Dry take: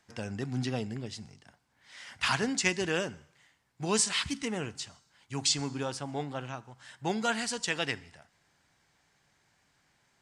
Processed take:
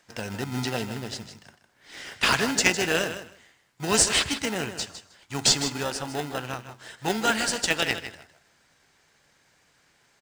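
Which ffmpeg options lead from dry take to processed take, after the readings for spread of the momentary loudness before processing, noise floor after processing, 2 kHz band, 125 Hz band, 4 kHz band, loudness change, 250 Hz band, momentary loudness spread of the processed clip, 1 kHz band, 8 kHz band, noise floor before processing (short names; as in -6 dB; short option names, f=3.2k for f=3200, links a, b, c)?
15 LU, -65 dBFS, +7.5 dB, +2.5 dB, +7.5 dB, +6.5 dB, +3.5 dB, 17 LU, +6.0 dB, +7.5 dB, -71 dBFS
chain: -filter_complex "[0:a]asplit=2[a][b];[b]acrusher=samples=39:mix=1:aa=0.000001,volume=-4.5dB[c];[a][c]amix=inputs=2:normalize=0,lowshelf=f=440:g=-10,aecho=1:1:156|312:0.282|0.0451,volume=7dB"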